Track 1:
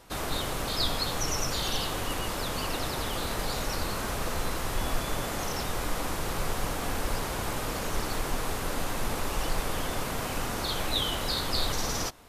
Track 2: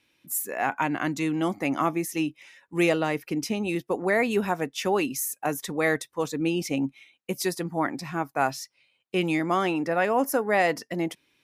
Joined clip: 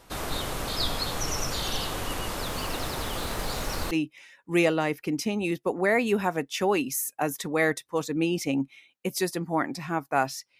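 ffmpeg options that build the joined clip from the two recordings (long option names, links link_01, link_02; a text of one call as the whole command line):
ffmpeg -i cue0.wav -i cue1.wav -filter_complex "[0:a]asettb=1/sr,asplit=3[link_01][link_02][link_03];[link_01]atrim=end=2.454[link_04];[link_02]atrim=start=2.45:end=3.91,asetpts=PTS-STARTPTS,afade=type=in:duration=0.004:curve=qsin,afade=type=out:start_time=1.456:duration=0.004:curve=qsin,acrusher=bits=7:mix=0:aa=0.5[link_05];[link_03]atrim=start=3.906[link_06];[link_04][link_05]acrossfade=duration=0.004:curve1=hsin:curve2=qsin[link_07];[link_07][link_06]acrossfade=duration=0.004:curve1=qsin:curve2=hsin,apad=whole_dur=10.59,atrim=end=10.59,atrim=end=3.912[link_08];[1:a]atrim=start=2.148:end=8.83[link_09];[link_08][link_09]acrossfade=duration=0.004:curve1=hsin:curve2=hsin" out.wav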